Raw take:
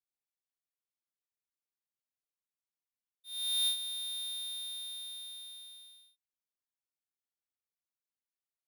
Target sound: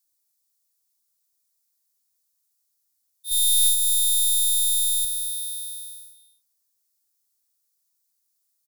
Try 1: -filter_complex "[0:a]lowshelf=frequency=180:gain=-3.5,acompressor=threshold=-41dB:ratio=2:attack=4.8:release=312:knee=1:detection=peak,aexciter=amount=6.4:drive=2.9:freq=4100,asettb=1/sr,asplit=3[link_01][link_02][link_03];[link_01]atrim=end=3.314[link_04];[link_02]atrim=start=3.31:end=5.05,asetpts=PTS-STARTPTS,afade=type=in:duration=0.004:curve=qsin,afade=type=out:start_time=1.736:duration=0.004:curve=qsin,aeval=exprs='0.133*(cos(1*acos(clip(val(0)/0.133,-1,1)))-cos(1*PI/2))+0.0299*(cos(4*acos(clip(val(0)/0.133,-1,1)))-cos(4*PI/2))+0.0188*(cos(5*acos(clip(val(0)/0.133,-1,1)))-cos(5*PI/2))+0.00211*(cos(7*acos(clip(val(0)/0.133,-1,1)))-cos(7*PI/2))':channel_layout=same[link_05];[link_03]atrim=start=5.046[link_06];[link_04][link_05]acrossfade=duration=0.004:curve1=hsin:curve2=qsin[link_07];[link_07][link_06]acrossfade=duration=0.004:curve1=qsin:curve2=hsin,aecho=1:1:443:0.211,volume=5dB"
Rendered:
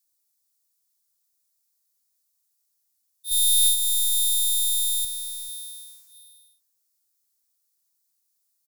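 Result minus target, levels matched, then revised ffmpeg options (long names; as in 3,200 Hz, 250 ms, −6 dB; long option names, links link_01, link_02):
echo 186 ms late
-filter_complex "[0:a]lowshelf=frequency=180:gain=-3.5,acompressor=threshold=-41dB:ratio=2:attack=4.8:release=312:knee=1:detection=peak,aexciter=amount=6.4:drive=2.9:freq=4100,asettb=1/sr,asplit=3[link_01][link_02][link_03];[link_01]atrim=end=3.314[link_04];[link_02]atrim=start=3.31:end=5.05,asetpts=PTS-STARTPTS,afade=type=in:duration=0.004:curve=qsin,afade=type=out:start_time=1.736:duration=0.004:curve=qsin,aeval=exprs='0.133*(cos(1*acos(clip(val(0)/0.133,-1,1)))-cos(1*PI/2))+0.0299*(cos(4*acos(clip(val(0)/0.133,-1,1)))-cos(4*PI/2))+0.0188*(cos(5*acos(clip(val(0)/0.133,-1,1)))-cos(5*PI/2))+0.00211*(cos(7*acos(clip(val(0)/0.133,-1,1)))-cos(7*PI/2))':channel_layout=same[link_05];[link_03]atrim=start=5.046[link_06];[link_04][link_05]acrossfade=duration=0.004:curve1=hsin:curve2=qsin[link_07];[link_07][link_06]acrossfade=duration=0.004:curve1=qsin:curve2=hsin,aecho=1:1:257:0.211,volume=5dB"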